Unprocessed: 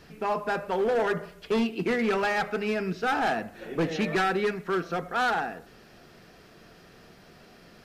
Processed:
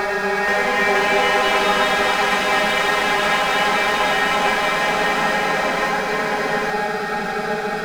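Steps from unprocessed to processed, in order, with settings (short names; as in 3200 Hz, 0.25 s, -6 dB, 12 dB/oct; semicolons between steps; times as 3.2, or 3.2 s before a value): high shelf 7700 Hz -5 dB; notch 2900 Hz, Q 5.2; de-hum 103.1 Hz, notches 14; Paulstretch 36×, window 0.50 s, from 2.28; crossover distortion -43.5 dBFS; on a send: split-band echo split 1300 Hz, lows 0.643 s, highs 0.348 s, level -4.5 dB; on the sum: echoes that change speed 0.477 s, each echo +4 st, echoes 3; gain +7 dB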